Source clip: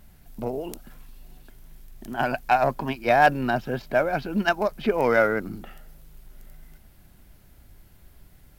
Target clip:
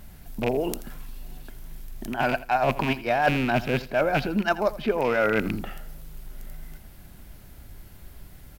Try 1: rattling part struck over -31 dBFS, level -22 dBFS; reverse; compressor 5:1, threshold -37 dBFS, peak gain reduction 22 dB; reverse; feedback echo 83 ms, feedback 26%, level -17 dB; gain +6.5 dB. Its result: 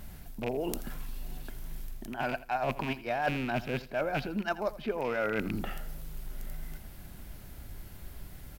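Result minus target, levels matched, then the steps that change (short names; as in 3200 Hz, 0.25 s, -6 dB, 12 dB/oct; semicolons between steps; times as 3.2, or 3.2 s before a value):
compressor: peak gain reduction +8.5 dB
change: compressor 5:1, threshold -26.5 dBFS, peak gain reduction 13.5 dB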